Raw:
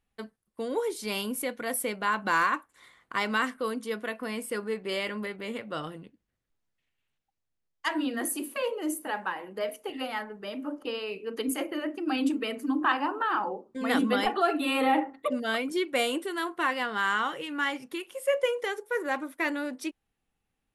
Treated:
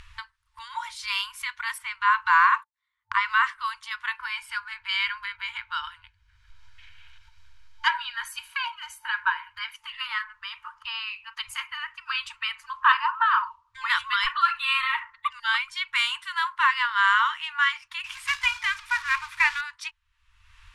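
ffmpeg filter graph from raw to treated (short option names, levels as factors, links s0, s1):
-filter_complex "[0:a]asettb=1/sr,asplit=3[s0][s1][s2];[s0]atrim=end=1.784[s3];[s1]atrim=start=1.78:end=3.49,asetpts=PTS-STARTPTS,afade=t=in:d=0.004:c=qsin,afade=t=out:st=1.706:d=0.004:c=qsin,agate=range=0.0126:threshold=0.00355:ratio=16:release=100:detection=peak,acrossover=split=2600[s4][s5];[s5]acompressor=threshold=0.00562:ratio=4:attack=1:release=60[s6];[s4][s6]amix=inputs=2:normalize=0[s7];[s2]atrim=start=3.486[s8];[s3][s7]acrossfade=d=0.004:c1=hsin:c2=qsin[s9];[s9][s8]acrossfade=d=0.004:c1=qsin:c2=hsin,asettb=1/sr,asplit=3[s10][s11][s12];[s10]atrim=end=4.184[s13];[s11]atrim=start=4.18:end=9.76,asetpts=PTS-STARTPTS,afade=t=in:d=0.004:c=qsin,afade=t=out:st=5.576:d=0.004:c=qsin,equalizer=f=8600:t=o:w=0.85:g=-5,aecho=1:1:1.3:0.55,atrim=end_sample=246078[s14];[s12]atrim=start=9.756[s15];[s13][s14]acrossfade=d=0.004:c1=hsin:c2=qsin[s16];[s16][s15]acrossfade=d=0.004:c1=qsin:c2=hsin,asettb=1/sr,asplit=3[s17][s18][s19];[s17]atrim=end=18.044[s20];[s18]atrim=start=18.04:end=19.61,asetpts=PTS-STARTPTS,afade=t=in:d=0.004:c=qsin,afade=t=out:st=1.566:d=0.004:c=qsin,aeval=exprs='val(0)+0.5*0.0075*sgn(val(0))':c=same,equalizer=f=2400:w=7.3:g=8.5,acrusher=bits=3:mode=log:mix=0:aa=0.000001[s21];[s19]atrim=start=19.606[s22];[s20][s21]acrossfade=d=0.004:c1=hsin:c2=qsin[s23];[s23][s22]acrossfade=d=0.004:c1=qsin:c2=hsin,acompressor=mode=upward:threshold=0.0178:ratio=2.5,afftfilt=real='re*(1-between(b*sr/4096,100,890))':imag='im*(1-between(b*sr/4096,100,890))':win_size=4096:overlap=0.75,lowpass=5000,volume=2.37"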